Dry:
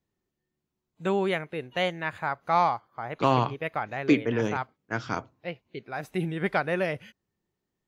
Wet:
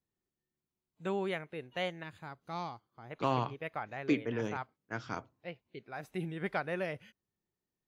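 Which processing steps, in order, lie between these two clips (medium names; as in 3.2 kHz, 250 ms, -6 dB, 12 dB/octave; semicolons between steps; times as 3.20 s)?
2.03–3.11 s: high-order bell 1.1 kHz -9.5 dB 2.5 oct; trim -8.5 dB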